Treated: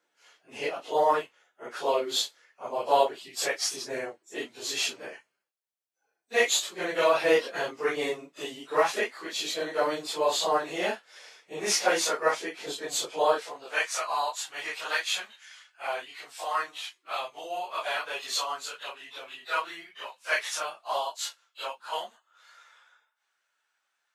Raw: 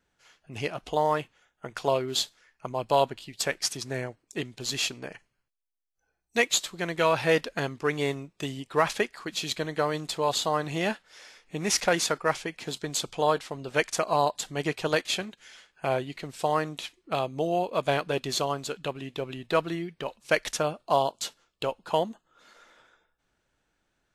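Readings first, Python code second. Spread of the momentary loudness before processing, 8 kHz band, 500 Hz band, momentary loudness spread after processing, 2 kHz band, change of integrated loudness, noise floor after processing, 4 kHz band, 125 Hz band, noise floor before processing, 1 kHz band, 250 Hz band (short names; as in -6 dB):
11 LU, 0.0 dB, -1.0 dB, 15 LU, +0.5 dB, -0.5 dB, -79 dBFS, 0.0 dB, -19.0 dB, -77 dBFS, -0.5 dB, -7.0 dB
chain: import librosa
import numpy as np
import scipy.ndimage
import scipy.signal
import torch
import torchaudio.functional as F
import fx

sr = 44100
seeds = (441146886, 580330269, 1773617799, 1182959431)

y = fx.phase_scramble(x, sr, seeds[0], window_ms=100)
y = fx.filter_sweep_highpass(y, sr, from_hz=420.0, to_hz=1100.0, start_s=13.25, end_s=13.97, q=1.0)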